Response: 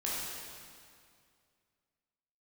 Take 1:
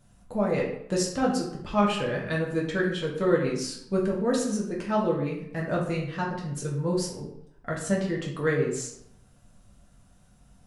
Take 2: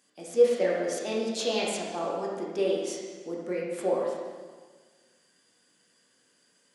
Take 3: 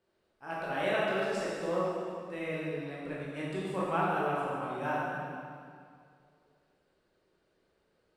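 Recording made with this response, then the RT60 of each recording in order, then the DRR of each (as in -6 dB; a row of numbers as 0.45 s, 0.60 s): 3; 0.75 s, 1.5 s, 2.2 s; -4.0 dB, -4.0 dB, -7.0 dB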